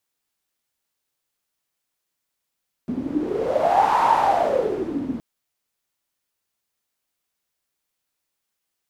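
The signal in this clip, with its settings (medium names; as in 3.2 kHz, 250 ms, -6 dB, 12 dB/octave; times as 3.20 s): wind-like swept noise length 2.32 s, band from 250 Hz, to 920 Hz, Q 10, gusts 1, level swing 9.5 dB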